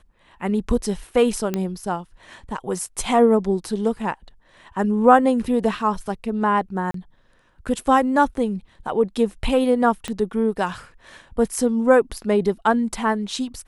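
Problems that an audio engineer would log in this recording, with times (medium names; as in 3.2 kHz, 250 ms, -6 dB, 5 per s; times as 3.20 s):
1.54 s: pop -10 dBFS
6.91–6.94 s: dropout 33 ms
10.08 s: pop -14 dBFS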